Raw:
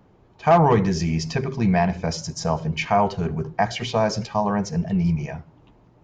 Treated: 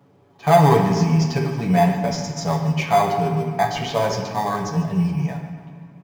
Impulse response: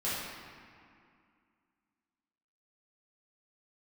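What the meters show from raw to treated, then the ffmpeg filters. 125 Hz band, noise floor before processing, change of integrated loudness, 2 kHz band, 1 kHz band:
+3.5 dB, −55 dBFS, +2.5 dB, +1.0 dB, +3.0 dB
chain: -filter_complex "[0:a]highpass=120,aecho=1:1:7.1:0.65,flanger=delay=8.6:depth=9.2:regen=-51:speed=0.45:shape=sinusoidal,asplit=2[link_01][link_02];[link_02]acrusher=samples=16:mix=1:aa=0.000001,volume=-10dB[link_03];[link_01][link_03]amix=inputs=2:normalize=0,aecho=1:1:145|290|435|580:0.168|0.0772|0.0355|0.0163,asplit=2[link_04][link_05];[1:a]atrim=start_sample=2205[link_06];[link_05][link_06]afir=irnorm=-1:irlink=0,volume=-10dB[link_07];[link_04][link_07]amix=inputs=2:normalize=0"

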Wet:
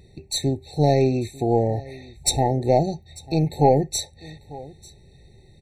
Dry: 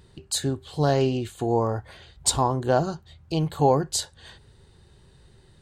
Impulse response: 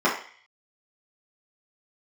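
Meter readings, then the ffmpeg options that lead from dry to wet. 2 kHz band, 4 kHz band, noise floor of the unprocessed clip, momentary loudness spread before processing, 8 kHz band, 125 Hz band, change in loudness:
−3.0 dB, +1.5 dB, −56 dBFS, 9 LU, +0.5 dB, +3.5 dB, +3.0 dB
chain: -af "aeval=exprs='0.501*(cos(1*acos(clip(val(0)/0.501,-1,1)))-cos(1*PI/2))+0.0282*(cos(4*acos(clip(val(0)/0.501,-1,1)))-cos(4*PI/2))':channel_layout=same,aecho=1:1:895:0.0891,afftfilt=real='re*eq(mod(floor(b*sr/1024/900),2),0)':imag='im*eq(mod(floor(b*sr/1024/900),2),0)':win_size=1024:overlap=0.75,volume=3.5dB"

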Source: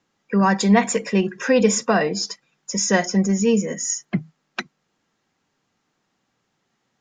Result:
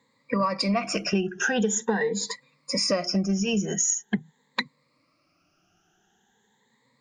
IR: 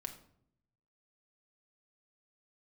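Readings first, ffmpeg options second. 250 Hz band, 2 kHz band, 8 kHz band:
−7.0 dB, −4.5 dB, −2.5 dB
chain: -af "afftfilt=real='re*pow(10,20/40*sin(2*PI*(0.99*log(max(b,1)*sr/1024/100)/log(2)-(0.44)*(pts-256)/sr)))':imag='im*pow(10,20/40*sin(2*PI*(0.99*log(max(b,1)*sr/1024/100)/log(2)-(0.44)*(pts-256)/sr)))':win_size=1024:overlap=0.75,acompressor=threshold=-21dB:ratio=16"

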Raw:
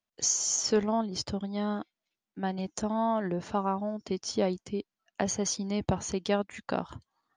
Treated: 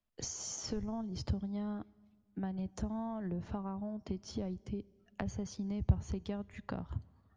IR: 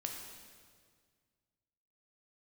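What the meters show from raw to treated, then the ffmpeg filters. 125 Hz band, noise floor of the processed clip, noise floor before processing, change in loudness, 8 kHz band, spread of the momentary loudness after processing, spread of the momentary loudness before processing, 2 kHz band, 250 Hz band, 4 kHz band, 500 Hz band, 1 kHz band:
−0.5 dB, −70 dBFS, below −85 dBFS, −9.0 dB, −14.5 dB, 8 LU, 11 LU, −12.5 dB, −6.0 dB, −13.0 dB, −14.0 dB, −15.0 dB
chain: -filter_complex "[0:a]aemphasis=mode=reproduction:type=bsi,acrossover=split=120[link_01][link_02];[link_02]acompressor=threshold=-37dB:ratio=10[link_03];[link_01][link_03]amix=inputs=2:normalize=0,asplit=2[link_04][link_05];[1:a]atrim=start_sample=2205,highshelf=frequency=8500:gain=-6.5[link_06];[link_05][link_06]afir=irnorm=-1:irlink=0,volume=-18.5dB[link_07];[link_04][link_07]amix=inputs=2:normalize=0,volume=-2dB"

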